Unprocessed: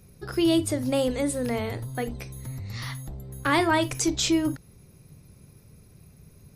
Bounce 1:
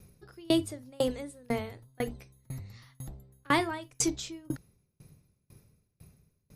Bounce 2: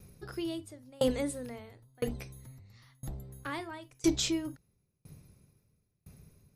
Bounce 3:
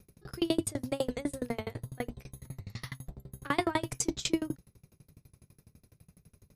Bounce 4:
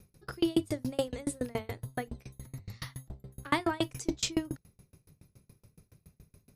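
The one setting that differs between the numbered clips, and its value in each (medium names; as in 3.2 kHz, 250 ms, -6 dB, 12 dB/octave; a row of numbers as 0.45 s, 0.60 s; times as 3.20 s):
sawtooth tremolo in dB, rate: 2 Hz, 0.99 Hz, 12 Hz, 7.1 Hz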